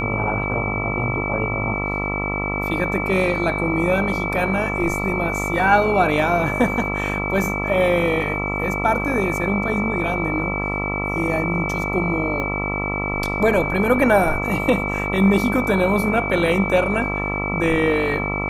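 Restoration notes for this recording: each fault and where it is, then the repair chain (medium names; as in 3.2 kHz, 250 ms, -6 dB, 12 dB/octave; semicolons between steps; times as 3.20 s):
buzz 50 Hz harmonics 27 -26 dBFS
whine 2.3 kHz -25 dBFS
12.40 s: pop -14 dBFS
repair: de-click; de-hum 50 Hz, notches 27; band-stop 2.3 kHz, Q 30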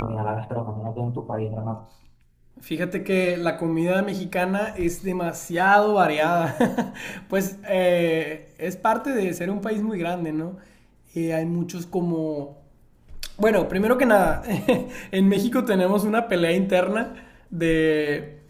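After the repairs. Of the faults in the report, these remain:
12.40 s: pop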